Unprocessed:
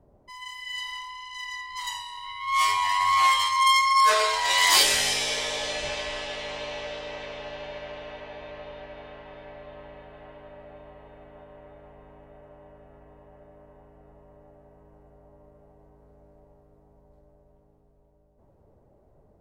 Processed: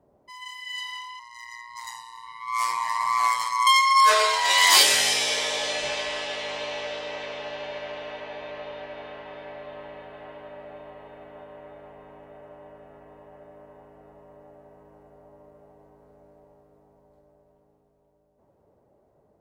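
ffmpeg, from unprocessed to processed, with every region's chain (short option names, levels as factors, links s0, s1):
-filter_complex "[0:a]asettb=1/sr,asplit=3[s0][s1][s2];[s0]atrim=end=1.194[s3];[s1]atrim=start=1.19:end=3.67,asetpts=PTS-STARTPTS,afade=t=in:d=0.004:c=qsin,afade=t=out:st=2.476:d=0.004:c=qsin,equalizer=f=3100:t=o:w=0.55:g=-14,aecho=1:1:279:0.0794,atrim=end_sample=109368,aeval=exprs='val(0)*sin(2*PI*59*n/s)':c=same[s4];[s2]atrim=start=3.666[s5];[s3][s4]acrossfade=d=0.004:c1=hsin:c2=qsin[s6];[s6][s5]acrossfade=d=0.004:c1=qsin:c2=hsin,highpass=f=240:p=1,dynaudnorm=f=370:g=17:m=1.78"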